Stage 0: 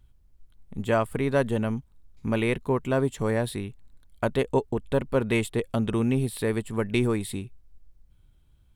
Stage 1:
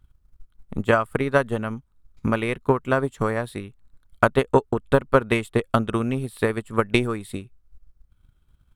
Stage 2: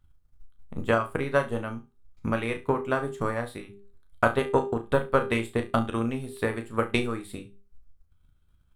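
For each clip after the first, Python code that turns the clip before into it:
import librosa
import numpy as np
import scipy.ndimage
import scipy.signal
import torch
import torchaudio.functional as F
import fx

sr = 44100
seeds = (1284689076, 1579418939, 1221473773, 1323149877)

y1 = fx.transient(x, sr, attack_db=11, sustain_db=-4)
y1 = fx.peak_eq(y1, sr, hz=1300.0, db=9.0, octaves=0.57)
y1 = F.gain(torch.from_numpy(y1), -2.5).numpy()
y2 = fx.hum_notches(y1, sr, base_hz=50, count=8)
y2 = fx.comb_fb(y2, sr, f0_hz=80.0, decay_s=0.2, harmonics='all', damping=0.0, mix_pct=70)
y2 = fx.room_flutter(y2, sr, wall_m=6.0, rt60_s=0.24)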